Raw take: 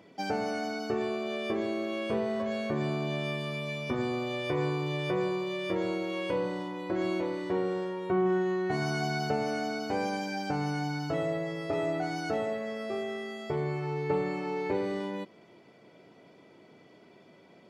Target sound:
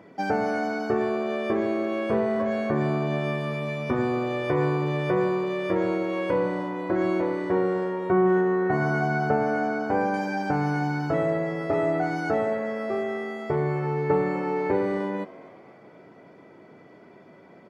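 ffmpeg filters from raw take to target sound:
ffmpeg -i in.wav -filter_complex "[0:a]asetnsamples=nb_out_samples=441:pad=0,asendcmd='8.41 highshelf g -14;10.14 highshelf g -8',highshelf=frequency=2300:width_type=q:width=1.5:gain=-7.5,asplit=5[link_01][link_02][link_03][link_04][link_05];[link_02]adelay=252,afreqshift=79,volume=-20dB[link_06];[link_03]adelay=504,afreqshift=158,volume=-26.2dB[link_07];[link_04]adelay=756,afreqshift=237,volume=-32.4dB[link_08];[link_05]adelay=1008,afreqshift=316,volume=-38.6dB[link_09];[link_01][link_06][link_07][link_08][link_09]amix=inputs=5:normalize=0,volume=6dB" out.wav

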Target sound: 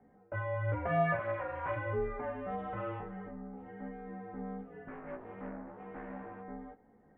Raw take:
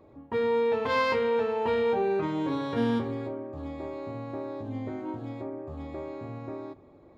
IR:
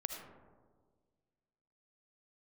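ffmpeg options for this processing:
-filter_complex "[0:a]highpass=390,asplit=3[link_01][link_02][link_03];[link_01]afade=type=out:start_time=1.17:duration=0.02[link_04];[link_02]aeval=exprs='abs(val(0))':channel_layout=same,afade=type=in:start_time=1.17:duration=0.02,afade=type=out:start_time=1.75:duration=0.02[link_05];[link_03]afade=type=in:start_time=1.75:duration=0.02[link_06];[link_04][link_05][link_06]amix=inputs=3:normalize=0,asettb=1/sr,asplit=3[link_07][link_08][link_09];[link_07]atrim=end=4.884[link_10];[link_08]atrim=start=4.88:end=6.42,asetpts=PTS-STARTPTS,afade=type=in:duration=0.004:curve=qsin,afade=type=out:start_time=1.536:duration=0.004:curve=qsin,aeval=exprs='0.0376*(cos(1*acos(clip(val(0)/0.0376,-1,1)))-cos(1*PI/2))+0.0075*(cos(6*acos(clip(val(0)/0.0376,-1,1)))-cos(6*PI/2))':channel_layout=same[link_11];[link_09]atrim=start=6.416[link_12];[link_10][link_11]acrossfade=duration=0.004:curve1=hsin:curve2=qsin[link_13];[link_13][link_12]acrossfade=duration=0.004:curve1=qsin:curve2=hsin,flanger=delay=15.5:depth=2.5:speed=1,highpass=frequency=570:width_type=q:width=0.5412,highpass=frequency=570:width_type=q:width=1.307,lowpass=frequency=2400:width_type=q:width=0.5176,lowpass=frequency=2400:width_type=q:width=0.7071,lowpass=frequency=2400:width_type=q:width=1.932,afreqshift=-360,volume=2dB"

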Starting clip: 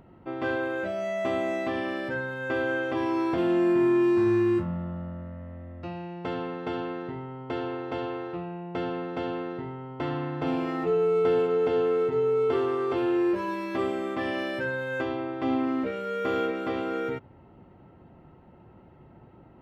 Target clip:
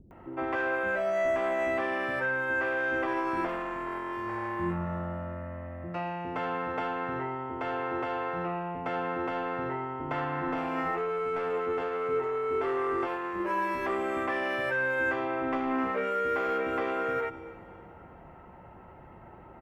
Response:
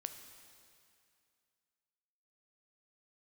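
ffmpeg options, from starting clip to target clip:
-filter_complex "[0:a]asplit=2[link_01][link_02];[1:a]atrim=start_sample=2205[link_03];[link_02][link_03]afir=irnorm=-1:irlink=0,volume=-1.5dB[link_04];[link_01][link_04]amix=inputs=2:normalize=0,asoftclip=type=tanh:threshold=-19dB,equalizer=frequency=125:width_type=o:width=1:gain=-8,equalizer=frequency=250:width_type=o:width=1:gain=-4,equalizer=frequency=1000:width_type=o:width=1:gain=3,equalizer=frequency=2000:width_type=o:width=1:gain=4,equalizer=frequency=4000:width_type=o:width=1:gain=-10,alimiter=limit=-23dB:level=0:latency=1:release=253,acrossover=split=330[link_05][link_06];[link_06]adelay=110[link_07];[link_05][link_07]amix=inputs=2:normalize=0,volume=2dB"

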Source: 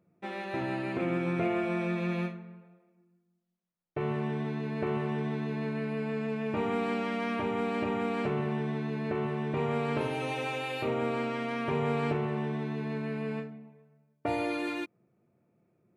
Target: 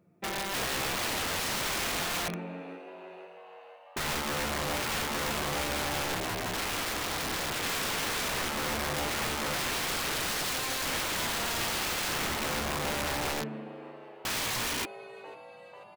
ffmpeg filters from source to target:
ffmpeg -i in.wav -filter_complex "[0:a]asplit=3[link_01][link_02][link_03];[link_01]afade=type=out:start_time=6.14:duration=0.02[link_04];[link_02]aeval=exprs='val(0)*sin(2*PI*180*n/s)':channel_layout=same,afade=type=in:start_time=6.14:duration=0.02,afade=type=out:start_time=7.61:duration=0.02[link_05];[link_03]afade=type=in:start_time=7.61:duration=0.02[link_06];[link_04][link_05][link_06]amix=inputs=3:normalize=0,asplit=7[link_07][link_08][link_09][link_10][link_11][link_12][link_13];[link_08]adelay=493,afreqshift=99,volume=-18.5dB[link_14];[link_09]adelay=986,afreqshift=198,volume=-22.4dB[link_15];[link_10]adelay=1479,afreqshift=297,volume=-26.3dB[link_16];[link_11]adelay=1972,afreqshift=396,volume=-30.1dB[link_17];[link_12]adelay=2465,afreqshift=495,volume=-34dB[link_18];[link_13]adelay=2958,afreqshift=594,volume=-37.9dB[link_19];[link_07][link_14][link_15][link_16][link_17][link_18][link_19]amix=inputs=7:normalize=0,aeval=exprs='(mod(37.6*val(0)+1,2)-1)/37.6':channel_layout=same,volume=4.5dB" out.wav

